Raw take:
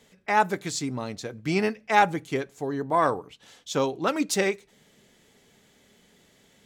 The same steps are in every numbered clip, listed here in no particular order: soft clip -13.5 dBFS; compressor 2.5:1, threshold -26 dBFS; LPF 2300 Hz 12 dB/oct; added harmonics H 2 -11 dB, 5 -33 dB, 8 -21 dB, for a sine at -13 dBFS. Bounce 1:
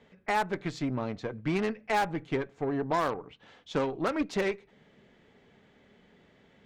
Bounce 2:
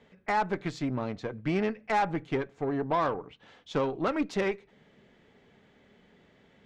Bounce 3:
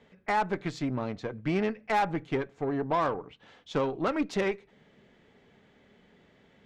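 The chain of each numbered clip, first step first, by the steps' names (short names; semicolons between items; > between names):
LPF > added harmonics > compressor > soft clip; soft clip > compressor > LPF > added harmonics; LPF > soft clip > compressor > added harmonics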